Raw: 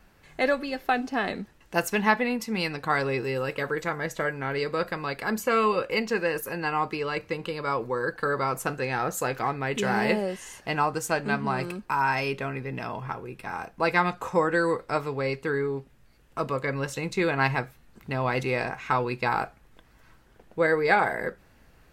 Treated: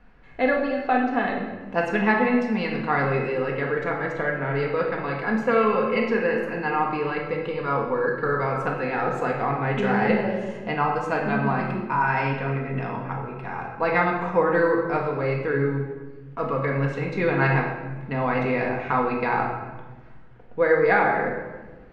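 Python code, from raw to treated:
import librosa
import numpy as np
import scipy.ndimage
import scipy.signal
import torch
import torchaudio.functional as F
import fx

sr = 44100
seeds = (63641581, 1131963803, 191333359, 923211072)

y = scipy.signal.sosfilt(scipy.signal.butter(2, 2400.0, 'lowpass', fs=sr, output='sos'), x)
y = fx.room_shoebox(y, sr, seeds[0], volume_m3=950.0, walls='mixed', distance_m=1.8)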